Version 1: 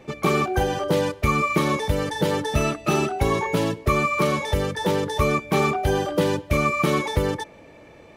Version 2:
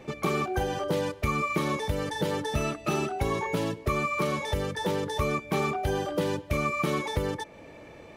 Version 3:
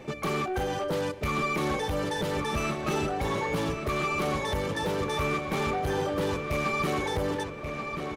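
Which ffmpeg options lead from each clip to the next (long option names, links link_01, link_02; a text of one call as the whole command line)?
ffmpeg -i in.wav -af "acompressor=threshold=-36dB:ratio=1.5" out.wav
ffmpeg -i in.wav -filter_complex "[0:a]asoftclip=type=tanh:threshold=-27dB,asplit=2[link_01][link_02];[link_02]adelay=1133,lowpass=frequency=4000:poles=1,volume=-6dB,asplit=2[link_03][link_04];[link_04]adelay=1133,lowpass=frequency=4000:poles=1,volume=0.47,asplit=2[link_05][link_06];[link_06]adelay=1133,lowpass=frequency=4000:poles=1,volume=0.47,asplit=2[link_07][link_08];[link_08]adelay=1133,lowpass=frequency=4000:poles=1,volume=0.47,asplit=2[link_09][link_10];[link_10]adelay=1133,lowpass=frequency=4000:poles=1,volume=0.47,asplit=2[link_11][link_12];[link_12]adelay=1133,lowpass=frequency=4000:poles=1,volume=0.47[link_13];[link_01][link_03][link_05][link_07][link_09][link_11][link_13]amix=inputs=7:normalize=0,volume=2.5dB" out.wav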